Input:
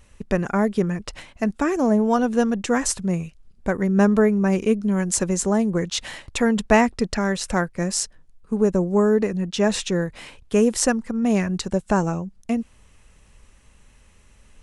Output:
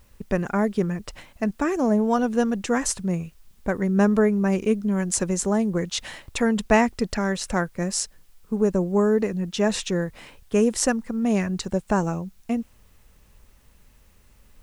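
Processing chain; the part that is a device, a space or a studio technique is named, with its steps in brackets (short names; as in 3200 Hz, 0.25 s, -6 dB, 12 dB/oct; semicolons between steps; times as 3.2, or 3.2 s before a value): plain cassette with noise reduction switched in (mismatched tape noise reduction decoder only; wow and flutter 15 cents; white noise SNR 41 dB); gain -2 dB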